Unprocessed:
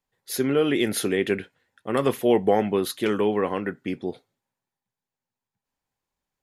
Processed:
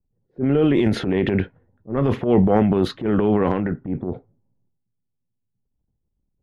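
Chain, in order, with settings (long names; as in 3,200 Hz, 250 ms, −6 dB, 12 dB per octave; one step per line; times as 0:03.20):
RIAA equalisation playback
transient designer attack −10 dB, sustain +9 dB
low-pass that shuts in the quiet parts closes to 390 Hz, open at −12 dBFS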